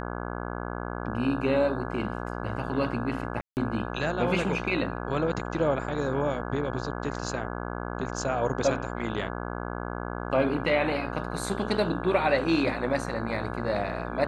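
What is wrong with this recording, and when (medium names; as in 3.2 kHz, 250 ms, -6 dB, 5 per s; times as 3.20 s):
buzz 60 Hz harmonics 28 -34 dBFS
3.41–3.57 s: dropout 159 ms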